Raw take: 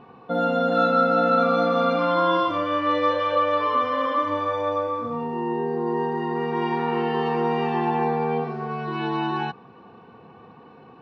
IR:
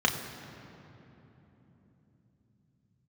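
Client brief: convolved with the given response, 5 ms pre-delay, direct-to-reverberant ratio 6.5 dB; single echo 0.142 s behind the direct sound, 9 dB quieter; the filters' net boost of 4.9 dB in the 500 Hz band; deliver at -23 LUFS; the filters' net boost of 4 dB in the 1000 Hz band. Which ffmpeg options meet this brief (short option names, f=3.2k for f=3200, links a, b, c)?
-filter_complex "[0:a]equalizer=f=500:t=o:g=4.5,equalizer=f=1k:t=o:g=4,aecho=1:1:142:0.355,asplit=2[a][b];[1:a]atrim=start_sample=2205,adelay=5[c];[b][c]afir=irnorm=-1:irlink=0,volume=-19dB[d];[a][d]amix=inputs=2:normalize=0,volume=-5.5dB"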